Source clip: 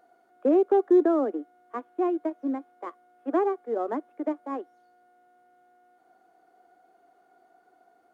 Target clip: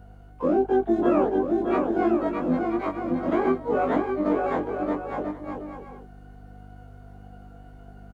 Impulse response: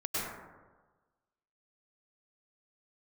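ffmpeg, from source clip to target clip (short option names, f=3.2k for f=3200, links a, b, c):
-filter_complex "[0:a]afftfilt=real='re':imag='-im':win_size=2048:overlap=0.75,alimiter=limit=-24dB:level=0:latency=1:release=338,aeval=exprs='val(0)+0.00158*(sin(2*PI*50*n/s)+sin(2*PI*2*50*n/s)/2+sin(2*PI*3*50*n/s)/3+sin(2*PI*4*50*n/s)/4+sin(2*PI*5*50*n/s)/5)':c=same,asplit=3[a][b][c];[b]asetrate=29433,aresample=44100,atempo=1.49831,volume=-10dB[d];[c]asetrate=88200,aresample=44100,atempo=0.5,volume=-11dB[e];[a][d][e]amix=inputs=3:normalize=0,asplit=2[f][g];[g]aecho=0:1:620|992|1215|1349|1429:0.631|0.398|0.251|0.158|0.1[h];[f][h]amix=inputs=2:normalize=0,volume=9dB"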